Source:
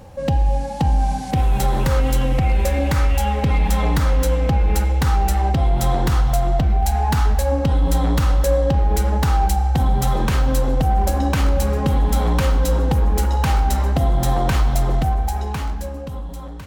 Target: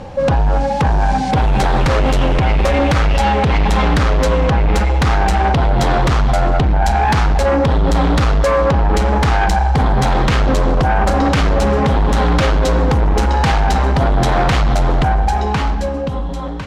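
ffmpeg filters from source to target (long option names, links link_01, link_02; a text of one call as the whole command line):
ffmpeg -i in.wav -filter_complex "[0:a]lowpass=4800,equalizer=frequency=72:width_type=o:width=1.3:gain=-6.5,asplit=2[link_01][link_02];[link_02]aeval=exprs='0.376*sin(PI/2*3.55*val(0)/0.376)':channel_layout=same,volume=-5.5dB[link_03];[link_01][link_03]amix=inputs=2:normalize=0" out.wav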